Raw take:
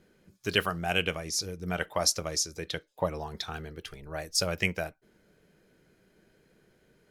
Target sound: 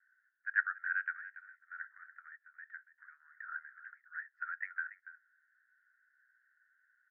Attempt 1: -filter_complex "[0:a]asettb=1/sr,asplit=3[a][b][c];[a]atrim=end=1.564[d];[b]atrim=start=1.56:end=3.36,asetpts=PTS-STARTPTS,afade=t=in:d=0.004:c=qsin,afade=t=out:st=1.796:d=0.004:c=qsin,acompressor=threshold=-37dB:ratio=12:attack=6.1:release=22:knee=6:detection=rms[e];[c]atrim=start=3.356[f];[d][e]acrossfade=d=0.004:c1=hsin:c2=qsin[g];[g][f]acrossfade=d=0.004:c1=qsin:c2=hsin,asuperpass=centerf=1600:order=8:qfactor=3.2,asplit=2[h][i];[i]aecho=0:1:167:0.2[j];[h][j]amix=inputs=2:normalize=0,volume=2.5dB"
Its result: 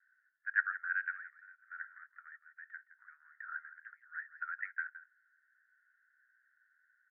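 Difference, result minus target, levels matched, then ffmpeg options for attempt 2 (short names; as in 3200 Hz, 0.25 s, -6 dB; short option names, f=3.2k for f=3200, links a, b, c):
echo 0.117 s early
-filter_complex "[0:a]asettb=1/sr,asplit=3[a][b][c];[a]atrim=end=1.564[d];[b]atrim=start=1.56:end=3.36,asetpts=PTS-STARTPTS,afade=t=in:d=0.004:c=qsin,afade=t=out:st=1.796:d=0.004:c=qsin,acompressor=threshold=-37dB:ratio=12:attack=6.1:release=22:knee=6:detection=rms[e];[c]atrim=start=3.356[f];[d][e]acrossfade=d=0.004:c1=hsin:c2=qsin[g];[g][f]acrossfade=d=0.004:c1=qsin:c2=hsin,asuperpass=centerf=1600:order=8:qfactor=3.2,asplit=2[h][i];[i]aecho=0:1:284:0.2[j];[h][j]amix=inputs=2:normalize=0,volume=2.5dB"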